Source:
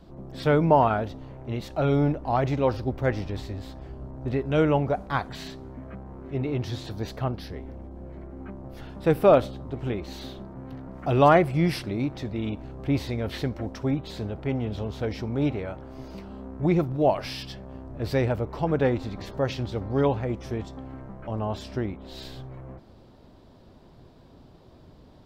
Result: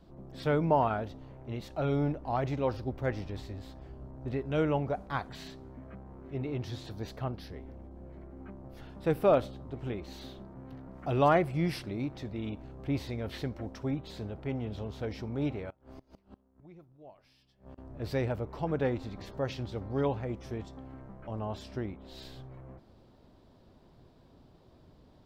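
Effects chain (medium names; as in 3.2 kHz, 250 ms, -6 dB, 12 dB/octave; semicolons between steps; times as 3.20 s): 15.70–17.78 s: inverted gate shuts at -30 dBFS, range -24 dB; trim -7 dB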